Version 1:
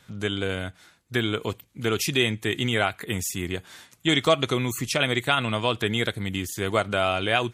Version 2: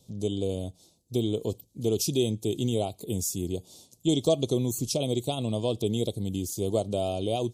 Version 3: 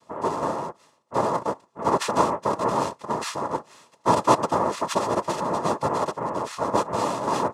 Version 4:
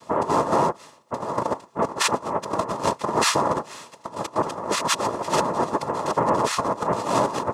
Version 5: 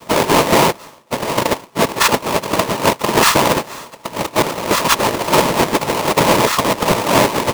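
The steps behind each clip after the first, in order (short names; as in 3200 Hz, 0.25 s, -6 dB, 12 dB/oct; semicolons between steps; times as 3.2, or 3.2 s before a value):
Chebyshev band-stop 540–5000 Hz, order 2
noise vocoder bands 2; bell 950 Hz +9.5 dB 1.4 oct; notch comb 760 Hz
negative-ratio compressor -29 dBFS, ratio -0.5; gain +6 dB
half-waves squared off; gain +4.5 dB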